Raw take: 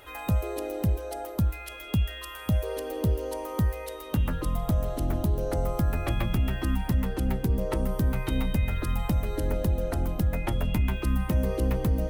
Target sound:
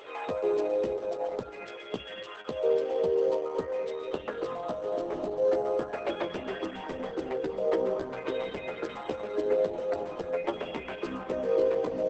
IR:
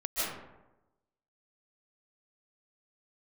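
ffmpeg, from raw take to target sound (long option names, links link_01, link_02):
-filter_complex "[0:a]lowpass=4900,acompressor=mode=upward:threshold=-46dB:ratio=2.5,flanger=delay=9.8:depth=7.7:regen=-7:speed=0.3:shape=triangular,highpass=frequency=440:width_type=q:width=3.5,aecho=1:1:237:0.1,asplit=2[link_01][link_02];[1:a]atrim=start_sample=2205,afade=type=out:start_time=0.34:duration=0.01,atrim=end_sample=15435[link_03];[link_02][link_03]afir=irnorm=-1:irlink=0,volume=-21.5dB[link_04];[link_01][link_04]amix=inputs=2:normalize=0,volume=1.5dB" -ar 48000 -c:a libopus -b:a 10k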